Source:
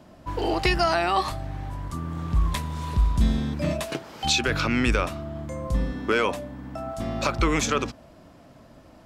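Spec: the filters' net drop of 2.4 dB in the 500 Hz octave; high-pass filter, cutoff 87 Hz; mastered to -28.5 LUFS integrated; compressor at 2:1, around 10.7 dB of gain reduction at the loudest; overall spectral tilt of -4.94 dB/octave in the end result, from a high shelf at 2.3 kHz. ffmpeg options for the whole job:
-af "highpass=87,equalizer=f=500:t=o:g=-3,highshelf=f=2300:g=-3,acompressor=threshold=0.01:ratio=2,volume=2.82"

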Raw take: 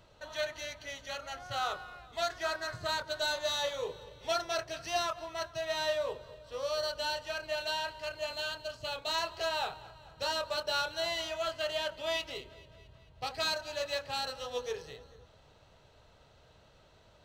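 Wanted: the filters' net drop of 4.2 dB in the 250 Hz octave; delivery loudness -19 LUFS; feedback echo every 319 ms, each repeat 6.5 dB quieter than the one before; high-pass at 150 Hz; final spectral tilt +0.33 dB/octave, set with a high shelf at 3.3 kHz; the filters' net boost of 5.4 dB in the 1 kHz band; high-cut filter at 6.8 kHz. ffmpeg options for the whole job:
-af "highpass=150,lowpass=6800,equalizer=f=250:t=o:g=-6.5,equalizer=f=1000:t=o:g=6.5,highshelf=f=3300:g=7.5,aecho=1:1:319|638|957|1276|1595|1914:0.473|0.222|0.105|0.0491|0.0231|0.0109,volume=3.76"

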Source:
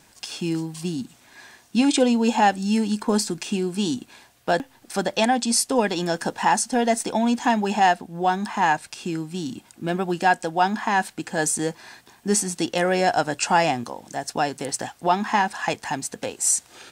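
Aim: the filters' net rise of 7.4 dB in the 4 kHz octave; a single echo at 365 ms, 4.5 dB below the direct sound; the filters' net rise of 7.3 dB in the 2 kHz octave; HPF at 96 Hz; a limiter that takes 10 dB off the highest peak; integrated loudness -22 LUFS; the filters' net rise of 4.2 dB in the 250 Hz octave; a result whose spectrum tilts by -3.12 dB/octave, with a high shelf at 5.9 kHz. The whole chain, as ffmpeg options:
-af "highpass=96,equalizer=f=250:t=o:g=5,equalizer=f=2000:t=o:g=7.5,equalizer=f=4000:t=o:g=4,highshelf=f=5900:g=8.5,alimiter=limit=0.266:level=0:latency=1,aecho=1:1:365:0.596,volume=0.944"

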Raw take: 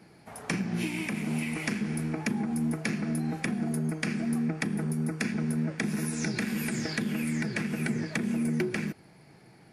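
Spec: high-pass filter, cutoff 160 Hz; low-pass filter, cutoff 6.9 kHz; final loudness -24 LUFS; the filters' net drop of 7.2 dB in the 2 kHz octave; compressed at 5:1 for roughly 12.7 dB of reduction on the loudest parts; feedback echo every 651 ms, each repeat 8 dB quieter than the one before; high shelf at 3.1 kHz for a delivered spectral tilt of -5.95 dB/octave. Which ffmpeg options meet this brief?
-af "highpass=160,lowpass=6900,equalizer=f=2000:t=o:g=-7,highshelf=f=3100:g=-5,acompressor=threshold=0.00794:ratio=5,aecho=1:1:651|1302|1953|2604|3255:0.398|0.159|0.0637|0.0255|0.0102,volume=10.6"

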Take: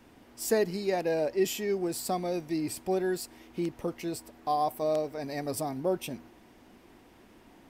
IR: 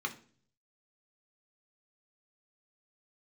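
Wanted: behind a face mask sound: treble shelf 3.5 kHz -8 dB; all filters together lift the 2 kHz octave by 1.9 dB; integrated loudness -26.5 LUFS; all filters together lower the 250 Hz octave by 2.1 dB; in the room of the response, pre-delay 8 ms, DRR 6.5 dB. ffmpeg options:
-filter_complex "[0:a]equalizer=f=250:t=o:g=-3.5,equalizer=f=2000:t=o:g=4.5,asplit=2[s0][s1];[1:a]atrim=start_sample=2205,adelay=8[s2];[s1][s2]afir=irnorm=-1:irlink=0,volume=0.299[s3];[s0][s3]amix=inputs=2:normalize=0,highshelf=f=3500:g=-8,volume=1.78"

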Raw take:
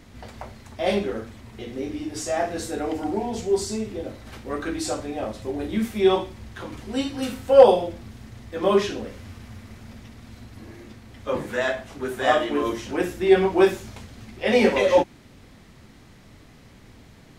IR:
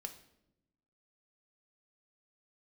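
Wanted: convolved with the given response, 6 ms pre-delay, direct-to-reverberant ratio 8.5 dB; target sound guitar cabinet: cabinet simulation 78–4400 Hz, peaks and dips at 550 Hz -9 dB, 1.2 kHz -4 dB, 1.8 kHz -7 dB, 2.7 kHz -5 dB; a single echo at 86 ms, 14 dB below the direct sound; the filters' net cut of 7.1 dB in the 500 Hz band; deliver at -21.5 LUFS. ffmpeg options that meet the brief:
-filter_complex "[0:a]equalizer=f=500:t=o:g=-4.5,aecho=1:1:86:0.2,asplit=2[s0][s1];[1:a]atrim=start_sample=2205,adelay=6[s2];[s1][s2]afir=irnorm=-1:irlink=0,volume=0.531[s3];[s0][s3]amix=inputs=2:normalize=0,highpass=78,equalizer=f=550:t=q:w=4:g=-9,equalizer=f=1200:t=q:w=4:g=-4,equalizer=f=1800:t=q:w=4:g=-7,equalizer=f=2700:t=q:w=4:g=-5,lowpass=f=4400:w=0.5412,lowpass=f=4400:w=1.3066,volume=2"

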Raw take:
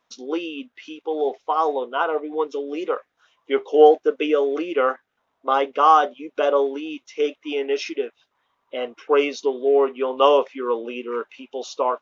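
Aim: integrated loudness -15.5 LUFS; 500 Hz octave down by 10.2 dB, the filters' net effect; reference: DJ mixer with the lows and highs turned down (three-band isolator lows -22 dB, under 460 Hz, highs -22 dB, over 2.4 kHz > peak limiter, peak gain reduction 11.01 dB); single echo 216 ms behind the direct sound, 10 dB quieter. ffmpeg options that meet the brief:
-filter_complex "[0:a]acrossover=split=460 2400:gain=0.0794 1 0.0794[s0][s1][s2];[s0][s1][s2]amix=inputs=3:normalize=0,equalizer=f=500:t=o:g=-6,aecho=1:1:216:0.316,volume=5.96,alimiter=limit=0.841:level=0:latency=1"

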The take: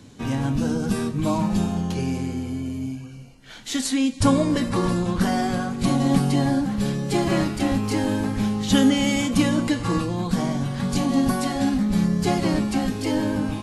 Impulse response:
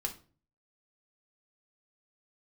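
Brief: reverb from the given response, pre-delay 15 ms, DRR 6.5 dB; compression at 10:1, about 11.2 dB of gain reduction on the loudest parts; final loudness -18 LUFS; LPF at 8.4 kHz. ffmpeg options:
-filter_complex "[0:a]lowpass=8400,acompressor=threshold=0.0631:ratio=10,asplit=2[s0][s1];[1:a]atrim=start_sample=2205,adelay=15[s2];[s1][s2]afir=irnorm=-1:irlink=0,volume=0.398[s3];[s0][s3]amix=inputs=2:normalize=0,volume=2.99"

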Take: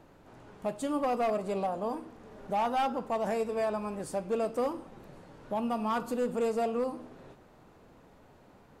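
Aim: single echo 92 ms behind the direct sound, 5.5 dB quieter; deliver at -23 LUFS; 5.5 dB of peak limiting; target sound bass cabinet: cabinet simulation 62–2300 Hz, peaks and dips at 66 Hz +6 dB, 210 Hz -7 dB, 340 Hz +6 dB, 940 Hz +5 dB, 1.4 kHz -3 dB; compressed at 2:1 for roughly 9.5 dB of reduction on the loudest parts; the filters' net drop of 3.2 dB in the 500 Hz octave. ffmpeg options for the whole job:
-af "equalizer=f=500:t=o:g=-5,acompressor=threshold=0.00501:ratio=2,alimiter=level_in=4.47:limit=0.0631:level=0:latency=1,volume=0.224,highpass=f=62:w=0.5412,highpass=f=62:w=1.3066,equalizer=f=66:t=q:w=4:g=6,equalizer=f=210:t=q:w=4:g=-7,equalizer=f=340:t=q:w=4:g=6,equalizer=f=940:t=q:w=4:g=5,equalizer=f=1400:t=q:w=4:g=-3,lowpass=f=2300:w=0.5412,lowpass=f=2300:w=1.3066,aecho=1:1:92:0.531,volume=11.9"

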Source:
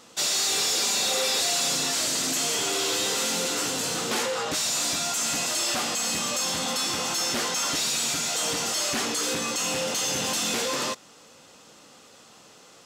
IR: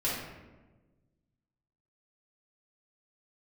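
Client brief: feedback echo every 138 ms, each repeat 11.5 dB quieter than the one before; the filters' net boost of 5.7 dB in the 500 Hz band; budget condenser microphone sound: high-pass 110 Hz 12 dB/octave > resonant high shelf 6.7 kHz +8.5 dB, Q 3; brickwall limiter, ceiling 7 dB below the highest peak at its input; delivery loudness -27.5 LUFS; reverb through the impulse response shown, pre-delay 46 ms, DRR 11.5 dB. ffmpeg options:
-filter_complex "[0:a]equalizer=f=500:t=o:g=6.5,alimiter=limit=0.075:level=0:latency=1,aecho=1:1:138|276|414:0.266|0.0718|0.0194,asplit=2[s0][s1];[1:a]atrim=start_sample=2205,adelay=46[s2];[s1][s2]afir=irnorm=-1:irlink=0,volume=0.106[s3];[s0][s3]amix=inputs=2:normalize=0,highpass=110,highshelf=f=6700:t=q:w=3:g=8.5,volume=0.447"

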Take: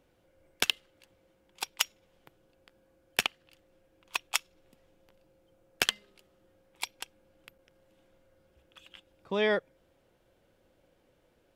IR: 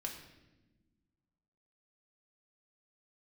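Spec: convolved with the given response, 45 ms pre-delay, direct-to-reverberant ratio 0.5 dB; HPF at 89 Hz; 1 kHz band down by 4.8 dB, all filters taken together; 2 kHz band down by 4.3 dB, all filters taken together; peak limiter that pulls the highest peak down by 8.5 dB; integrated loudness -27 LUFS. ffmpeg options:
-filter_complex "[0:a]highpass=89,equalizer=f=1000:t=o:g=-5,equalizer=f=2000:t=o:g=-4.5,alimiter=limit=0.141:level=0:latency=1,asplit=2[s0][s1];[1:a]atrim=start_sample=2205,adelay=45[s2];[s1][s2]afir=irnorm=-1:irlink=0,volume=1.06[s3];[s0][s3]amix=inputs=2:normalize=0,volume=2.66"

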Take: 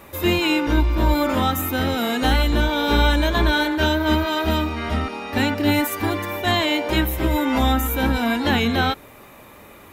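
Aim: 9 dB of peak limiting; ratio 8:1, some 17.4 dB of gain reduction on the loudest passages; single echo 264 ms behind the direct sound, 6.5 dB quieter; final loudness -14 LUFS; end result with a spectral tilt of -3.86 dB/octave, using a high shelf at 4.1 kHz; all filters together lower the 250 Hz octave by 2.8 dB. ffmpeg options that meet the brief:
-af "equalizer=f=250:t=o:g=-3.5,highshelf=f=4100:g=8,acompressor=threshold=0.0251:ratio=8,alimiter=level_in=1.78:limit=0.0631:level=0:latency=1,volume=0.562,aecho=1:1:264:0.473,volume=13.3"

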